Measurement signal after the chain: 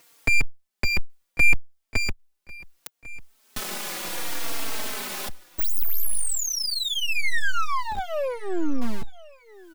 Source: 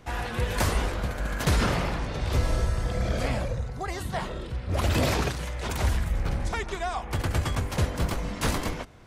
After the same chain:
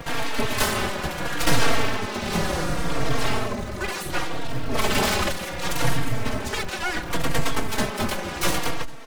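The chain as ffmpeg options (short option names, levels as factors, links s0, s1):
-filter_complex "[0:a]highpass=f=110:p=1,bandreject=f=410:w=12,adynamicequalizer=threshold=0.00398:dfrequency=6900:dqfactor=1.6:tfrequency=6900:tqfactor=1.6:attack=5:release=100:ratio=0.375:range=2:mode=cutabove:tftype=bell,asplit=2[s0][s1];[s1]acompressor=mode=upward:threshold=0.0398:ratio=2.5,volume=0.944[s2];[s0][s2]amix=inputs=2:normalize=0,aeval=exprs='abs(val(0))':c=same,acrossover=split=140[s3][s4];[s3]acrusher=bits=5:mix=0:aa=0.000001[s5];[s5][s4]amix=inputs=2:normalize=0,aecho=1:1:1097|2194:0.0841|0.0244,asplit=2[s6][s7];[s7]adelay=3.8,afreqshift=-0.69[s8];[s6][s8]amix=inputs=2:normalize=1,volume=1.88"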